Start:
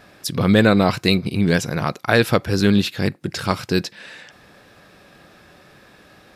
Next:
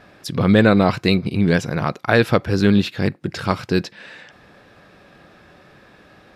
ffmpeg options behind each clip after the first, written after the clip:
-af "highshelf=f=5.5k:g=-12,volume=1dB"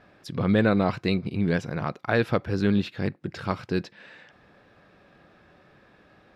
-af "highshelf=f=5.6k:g=-10,volume=-7.5dB"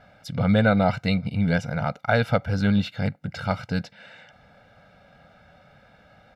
-af "aecho=1:1:1.4:0.96"

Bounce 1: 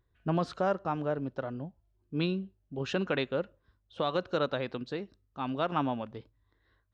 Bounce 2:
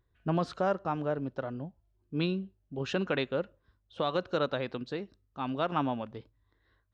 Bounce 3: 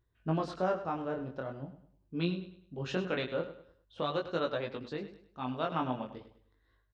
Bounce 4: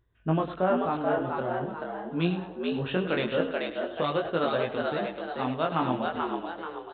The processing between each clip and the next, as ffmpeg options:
-af anull
-af "flanger=delay=17.5:depth=6.8:speed=0.44,aecho=1:1:102|204|306|408:0.237|0.083|0.029|0.0102"
-filter_complex "[0:a]aresample=8000,aresample=44100,asplit=6[a][b][c][d][e][f];[b]adelay=434,afreqshift=82,volume=-3.5dB[g];[c]adelay=868,afreqshift=164,volume=-10.8dB[h];[d]adelay=1302,afreqshift=246,volume=-18.2dB[i];[e]adelay=1736,afreqshift=328,volume=-25.5dB[j];[f]adelay=2170,afreqshift=410,volume=-32.8dB[k];[a][g][h][i][j][k]amix=inputs=6:normalize=0,volume=5.5dB"

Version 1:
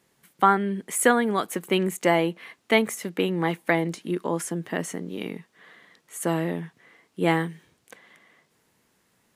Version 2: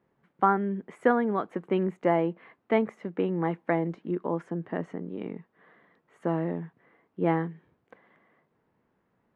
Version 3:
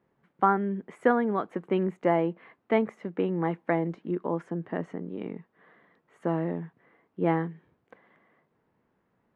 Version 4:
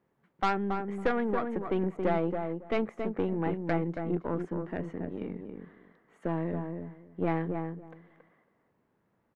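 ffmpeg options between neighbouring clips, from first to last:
-af "lowpass=1.3k,volume=-2.5dB"
-af anull
-filter_complex "[0:a]aeval=exprs='(tanh(10*val(0)+0.55)-tanh(0.55))/10':c=same,asplit=2[a][b];[b]adelay=276,lowpass=f=1.2k:p=1,volume=-4.5dB,asplit=2[c][d];[d]adelay=276,lowpass=f=1.2k:p=1,volume=0.18,asplit=2[e][f];[f]adelay=276,lowpass=f=1.2k:p=1,volume=0.18[g];[c][e][g]amix=inputs=3:normalize=0[h];[a][h]amix=inputs=2:normalize=0"

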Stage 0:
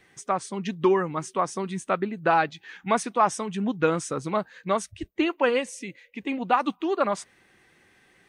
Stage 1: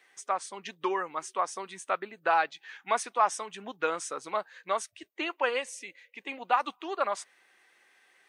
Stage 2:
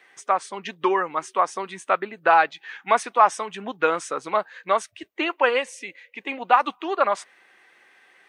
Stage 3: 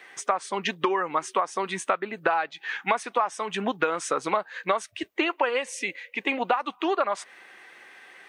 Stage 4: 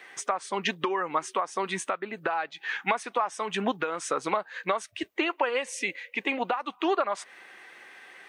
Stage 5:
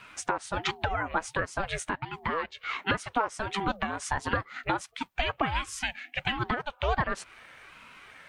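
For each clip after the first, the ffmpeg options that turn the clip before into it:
-af "highpass=610,volume=-2.5dB"
-af "bass=f=250:g=2,treble=f=4k:g=-8,volume=8.5dB"
-af "acompressor=threshold=-27dB:ratio=20,volume=6.5dB"
-af "alimiter=limit=-13.5dB:level=0:latency=1:release=378"
-af "aeval=exprs='val(0)*sin(2*PI*410*n/s+410*0.45/1.4*sin(2*PI*1.4*n/s))':c=same,volume=1.5dB"

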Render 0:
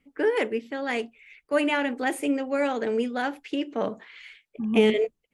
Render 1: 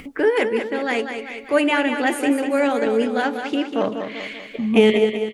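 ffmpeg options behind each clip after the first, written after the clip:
-af "acompressor=mode=upward:threshold=-29dB:ratio=2.5,aecho=1:1:194|388|582|776|970|1164:0.422|0.211|0.105|0.0527|0.0264|0.0132,volume=5.5dB"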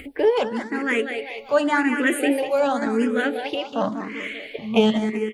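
-filter_complex "[0:a]asplit=2[a][b];[b]afreqshift=0.91[c];[a][c]amix=inputs=2:normalize=1,volume=2dB"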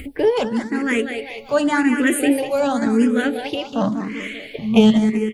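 -af "bass=f=250:g=12,treble=f=4k:g=7"

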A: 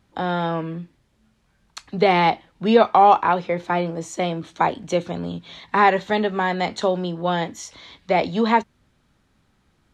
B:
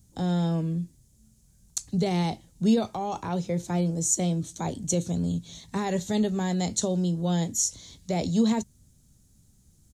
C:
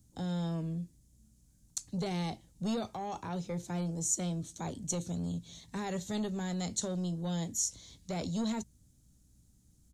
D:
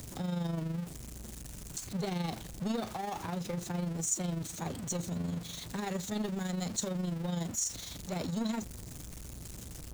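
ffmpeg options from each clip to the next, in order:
-af "alimiter=limit=-11dB:level=0:latency=1:release=18,firequalizer=gain_entry='entry(120,0);entry(320,-11);entry(1100,-23);entry(2500,-19);entry(6600,8)':delay=0.05:min_phase=1,volume=6dB"
-filter_complex "[0:a]acrossover=split=1800[a][b];[a]asoftclip=type=tanh:threshold=-23dB[c];[c][b]amix=inputs=2:normalize=0,aeval=exprs='val(0)+0.000891*(sin(2*PI*60*n/s)+sin(2*PI*2*60*n/s)/2+sin(2*PI*3*60*n/s)/3+sin(2*PI*4*60*n/s)/4+sin(2*PI*5*60*n/s)/5)':c=same,volume=-6.5dB"
-af "aeval=exprs='val(0)+0.5*0.0141*sgn(val(0))':c=same,tremolo=f=24:d=0.519"

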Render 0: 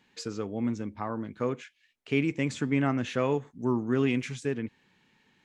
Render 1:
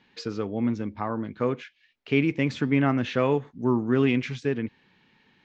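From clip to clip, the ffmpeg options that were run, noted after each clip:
-af "lowpass=f=5.1k:w=0.5412,lowpass=f=5.1k:w=1.3066,volume=4dB"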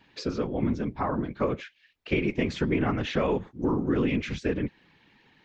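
-af "afftfilt=real='hypot(re,im)*cos(2*PI*random(0))':imag='hypot(re,im)*sin(2*PI*random(1))':win_size=512:overlap=0.75,acompressor=threshold=-29dB:ratio=6,volume=7.5dB"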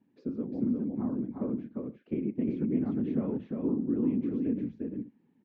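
-filter_complex "[0:a]bandpass=f=240:t=q:w=2.6:csg=0,asplit=2[a][b];[b]aecho=0:1:353|421:0.708|0.141[c];[a][c]amix=inputs=2:normalize=0"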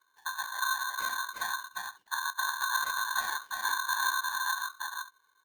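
-af "aeval=exprs='val(0)*sgn(sin(2*PI*1300*n/s))':c=same,volume=-2dB"

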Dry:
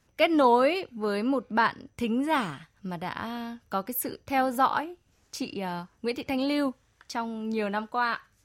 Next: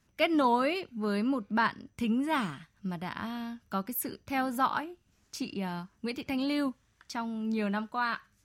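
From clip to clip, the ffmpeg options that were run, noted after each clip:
-af "equalizer=f=200:t=o:w=0.33:g=6,equalizer=f=500:t=o:w=0.33:g=-7,equalizer=f=800:t=o:w=0.33:g=-4,volume=-3dB"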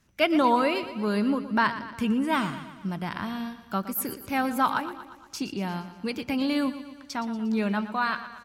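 -af "aecho=1:1:118|236|354|472|590|708:0.224|0.128|0.0727|0.0415|0.0236|0.0135,volume=4dB"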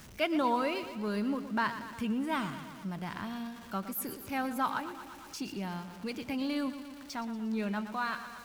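-af "aeval=exprs='val(0)+0.5*0.0126*sgn(val(0))':c=same,volume=-8dB"

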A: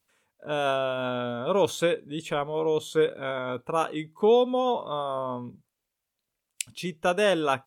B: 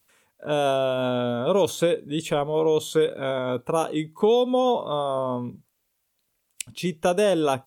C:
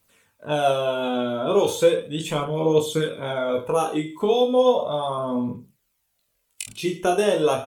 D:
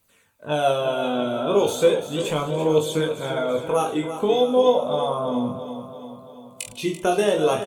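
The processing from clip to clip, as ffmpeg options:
-filter_complex "[0:a]highshelf=f=9.9k:g=6.5,acrossover=split=890|3200[a][b][c];[a]acompressor=threshold=-24dB:ratio=4[d];[b]acompressor=threshold=-45dB:ratio=4[e];[c]acompressor=threshold=-40dB:ratio=4[f];[d][e][f]amix=inputs=3:normalize=0,volume=6.5dB"
-af "aecho=1:1:20|44|72.8|107.4|148.8:0.631|0.398|0.251|0.158|0.1,aphaser=in_gain=1:out_gain=1:delay=3.1:decay=0.43:speed=0.36:type=triangular,volume=-1.5dB"
-filter_complex "[0:a]bandreject=f=5.3k:w=15,asplit=2[a][b];[b]aecho=0:1:339|678|1017|1356|1695|2034:0.282|0.161|0.0916|0.0522|0.0298|0.017[c];[a][c]amix=inputs=2:normalize=0"

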